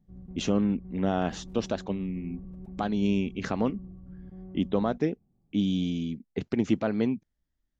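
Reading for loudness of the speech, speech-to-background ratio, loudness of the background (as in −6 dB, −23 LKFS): −29.5 LKFS, 15.5 dB, −45.0 LKFS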